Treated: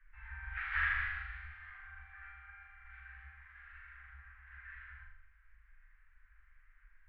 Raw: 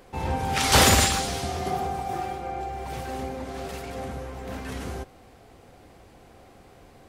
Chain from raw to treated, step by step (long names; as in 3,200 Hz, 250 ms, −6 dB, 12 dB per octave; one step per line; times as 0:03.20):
elliptic low-pass filter 1,700 Hz, stop band 80 dB
multi-voice chorus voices 2, 1.1 Hz, delay 12 ms, depth 3.7 ms
inverse Chebyshev band-stop filter 120–700 Hz, stop band 60 dB
flutter between parallel walls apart 7 metres, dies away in 0.7 s
level +5 dB